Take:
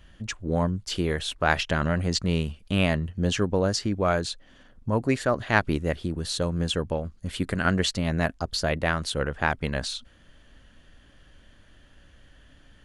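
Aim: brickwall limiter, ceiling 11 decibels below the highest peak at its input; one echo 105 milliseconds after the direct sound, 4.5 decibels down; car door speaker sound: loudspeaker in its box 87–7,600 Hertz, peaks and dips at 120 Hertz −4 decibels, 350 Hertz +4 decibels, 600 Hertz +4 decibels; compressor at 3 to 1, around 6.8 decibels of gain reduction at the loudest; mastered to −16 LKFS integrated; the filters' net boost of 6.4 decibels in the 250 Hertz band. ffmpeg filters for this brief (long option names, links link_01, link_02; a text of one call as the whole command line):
ffmpeg -i in.wav -af "equalizer=frequency=250:width_type=o:gain=8,acompressor=threshold=-23dB:ratio=3,alimiter=limit=-22dB:level=0:latency=1,highpass=87,equalizer=frequency=120:width_type=q:width=4:gain=-4,equalizer=frequency=350:width_type=q:width=4:gain=4,equalizer=frequency=600:width_type=q:width=4:gain=4,lowpass=frequency=7600:width=0.5412,lowpass=frequency=7600:width=1.3066,aecho=1:1:105:0.596,volume=15dB" out.wav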